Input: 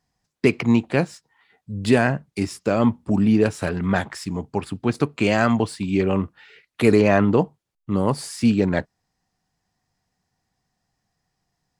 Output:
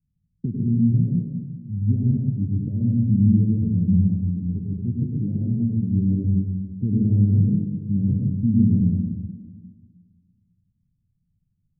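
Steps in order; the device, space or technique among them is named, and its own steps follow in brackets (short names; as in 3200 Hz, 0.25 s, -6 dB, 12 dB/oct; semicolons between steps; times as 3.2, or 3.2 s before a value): club heard from the street (limiter -8.5 dBFS, peak gain reduction 5.5 dB; LPF 190 Hz 24 dB/oct; reverb RT60 1.5 s, pre-delay 91 ms, DRR -2 dB); 4.29–5.83 dynamic EQ 130 Hz, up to -3 dB, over -30 dBFS, Q 0.99; gain +3 dB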